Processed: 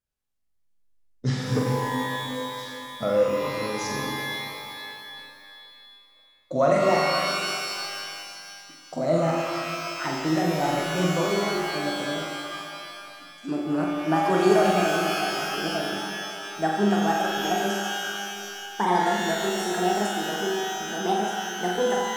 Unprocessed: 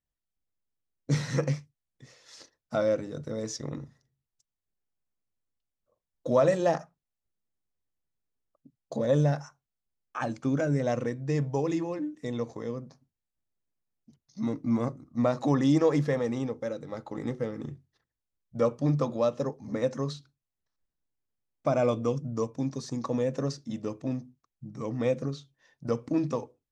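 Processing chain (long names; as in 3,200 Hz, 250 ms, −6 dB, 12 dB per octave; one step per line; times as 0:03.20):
gliding playback speed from 86% → 155%
flutter between parallel walls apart 7.6 metres, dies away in 0.67 s
reverb with rising layers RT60 2.4 s, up +12 semitones, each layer −2 dB, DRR 4.5 dB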